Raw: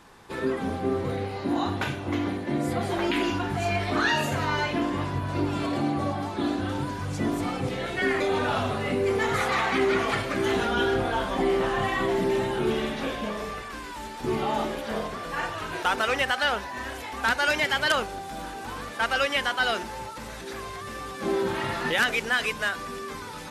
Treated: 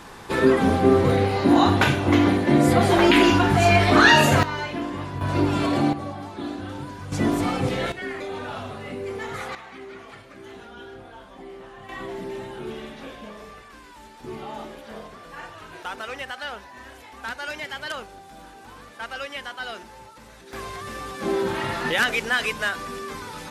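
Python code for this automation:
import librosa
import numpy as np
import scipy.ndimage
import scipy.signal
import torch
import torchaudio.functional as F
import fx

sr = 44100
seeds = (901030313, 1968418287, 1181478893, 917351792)

y = fx.gain(x, sr, db=fx.steps((0.0, 10.0), (4.43, -2.5), (5.21, 5.5), (5.93, -4.5), (7.12, 5.0), (7.92, -7.0), (9.55, -17.0), (11.89, -8.5), (20.53, 2.0)))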